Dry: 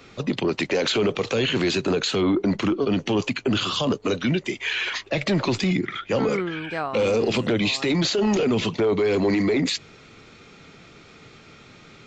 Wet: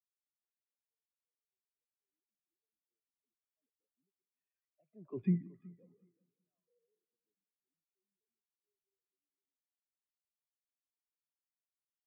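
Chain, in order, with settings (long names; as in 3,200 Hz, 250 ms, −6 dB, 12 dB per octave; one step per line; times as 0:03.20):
mu-law and A-law mismatch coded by mu
source passing by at 0:05.25, 22 m/s, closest 1.2 metres
Bessel low-pass filter 1,600 Hz, order 2
low-shelf EQ 400 Hz −8 dB
on a send: echo machine with several playback heads 187 ms, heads first and second, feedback 55%, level −11.5 dB
on the sum: every bin expanded away from the loudest bin 2.5 to 1
level −2 dB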